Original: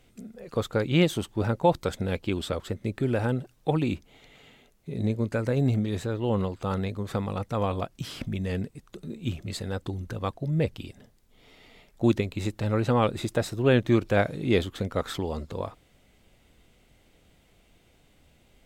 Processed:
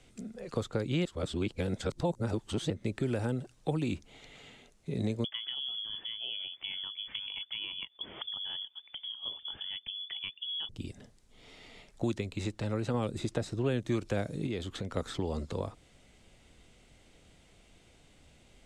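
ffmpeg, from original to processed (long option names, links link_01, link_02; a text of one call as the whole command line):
ffmpeg -i in.wav -filter_complex "[0:a]asettb=1/sr,asplit=3[link_01][link_02][link_03];[link_01]atrim=end=5.244[link_04];[link_02]atrim=start=5.24:end=10.69,asetpts=PTS-STARTPTS,afade=type=in:duration=0.004:curve=qsin,afade=type=out:start_time=5.446:duration=0.004:curve=qsin,lowpass=frequency=3000:width_type=q:width=0.5098,lowpass=frequency=3000:width_type=q:width=0.6013,lowpass=frequency=3000:width_type=q:width=0.9,lowpass=frequency=3000:width_type=q:width=2.563,afreqshift=-3500[link_05];[link_03]atrim=start=10.686[link_06];[link_04][link_05]acrossfade=duration=0.004:curve1=hsin:curve2=qsin[link_07];[link_07][link_06]acrossfade=duration=0.004:curve1=qsin:curve2=hsin,asettb=1/sr,asplit=3[link_08][link_09][link_10];[link_08]atrim=end=14.464[link_11];[link_09]atrim=start=14.46:end=14.97,asetpts=PTS-STARTPTS,afade=type=in:duration=0.004:curve=qsin,afade=type=out:start_time=0.506:duration=0.004:curve=qsin,acompressor=threshold=-34dB:ratio=3:attack=3.2:release=140:knee=1:detection=peak[link_12];[link_10]atrim=start=14.966[link_13];[link_11][link_12]acrossfade=duration=0.004:curve1=hsin:curve2=qsin[link_14];[link_14][link_13]acrossfade=duration=0.004:curve1=qsin:curve2=hsin,asplit=5[link_15][link_16][link_17][link_18][link_19];[link_15]atrim=end=1.052[link_20];[link_16]atrim=start=1.048:end=2.702,asetpts=PTS-STARTPTS,areverse[link_21];[link_17]atrim=start=2.698:end=12.042[link_22];[link_18]atrim=start=12.038:end=12.942,asetpts=PTS-STARTPTS,volume=-3.5dB[link_23];[link_19]atrim=start=12.938[link_24];[link_20][link_21]acrossfade=duration=0.004:curve1=hsin:curve2=hsin[link_25];[link_25][link_22]acrossfade=duration=0.004:curve1=hsin:curve2=hsin[link_26];[link_26][link_23]acrossfade=duration=0.004:curve1=hsin:curve2=hsin[link_27];[link_27][link_24]acrossfade=duration=0.004:curve1=hsin:curve2=hsin,lowpass=frequency=9300:width=0.5412,lowpass=frequency=9300:width=1.3066,highshelf=frequency=5100:gain=6,acrossover=split=210|470|5800[link_28][link_29][link_30][link_31];[link_28]acompressor=threshold=-35dB:ratio=4[link_32];[link_29]acompressor=threshold=-34dB:ratio=4[link_33];[link_30]acompressor=threshold=-40dB:ratio=4[link_34];[link_31]acompressor=threshold=-54dB:ratio=4[link_35];[link_32][link_33][link_34][link_35]amix=inputs=4:normalize=0" out.wav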